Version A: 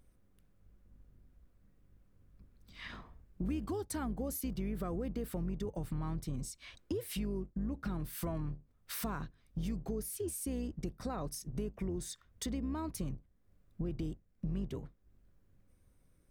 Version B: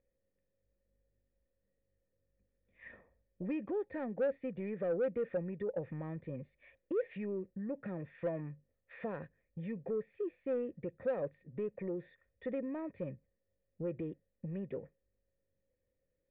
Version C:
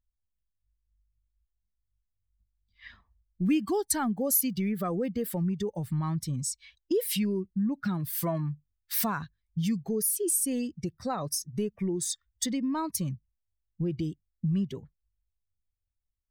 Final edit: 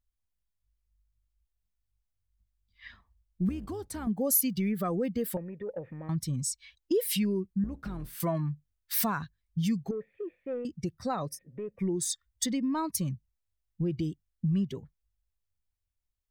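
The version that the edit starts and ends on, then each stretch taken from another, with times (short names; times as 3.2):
C
3.49–4.07 from A
5.37–6.09 from B
7.64–8.2 from A
9.91–10.65 from B
11.31–11.75 from B, crossfade 0.16 s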